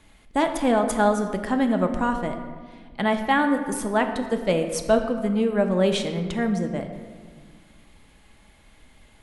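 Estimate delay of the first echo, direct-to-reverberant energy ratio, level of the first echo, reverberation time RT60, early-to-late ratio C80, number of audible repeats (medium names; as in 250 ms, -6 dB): no echo, 5.0 dB, no echo, 1.6 s, 9.5 dB, no echo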